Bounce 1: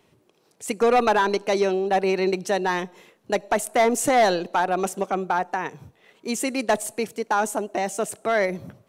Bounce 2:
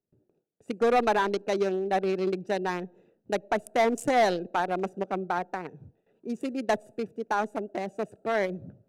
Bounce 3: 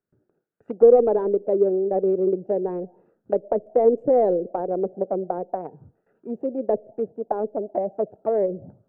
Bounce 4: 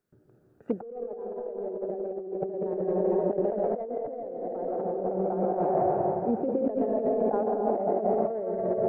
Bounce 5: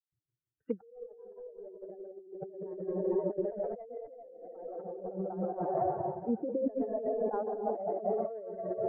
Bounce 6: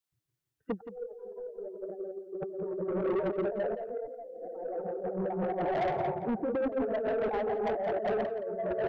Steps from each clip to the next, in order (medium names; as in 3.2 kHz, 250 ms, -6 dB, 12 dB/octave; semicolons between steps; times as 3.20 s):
local Wiener filter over 41 samples; gate with hold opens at -54 dBFS; trim -3.5 dB
touch-sensitive low-pass 490–1500 Hz down, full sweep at -26 dBFS
reverberation RT60 2.9 s, pre-delay 113 ms, DRR -1 dB; compressor with a negative ratio -28 dBFS, ratio -1; trim -2 dB
expander on every frequency bin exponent 2; trim -1.5 dB
saturation -33 dBFS, distortion -9 dB; delay 171 ms -13 dB; trim +6.5 dB